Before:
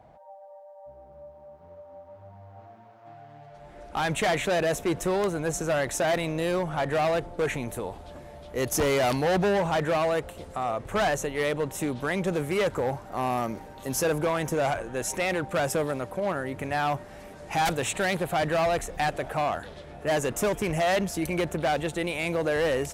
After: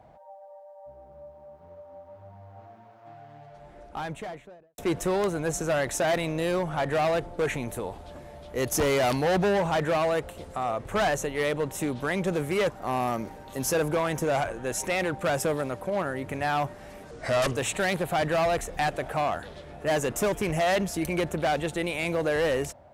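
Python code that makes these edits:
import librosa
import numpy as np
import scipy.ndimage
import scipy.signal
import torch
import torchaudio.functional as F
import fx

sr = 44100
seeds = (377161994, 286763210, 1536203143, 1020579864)

y = fx.studio_fade_out(x, sr, start_s=3.34, length_s=1.44)
y = fx.edit(y, sr, fx.cut(start_s=12.7, length_s=0.3),
    fx.speed_span(start_s=17.41, length_s=0.36, speed=0.79), tone=tone)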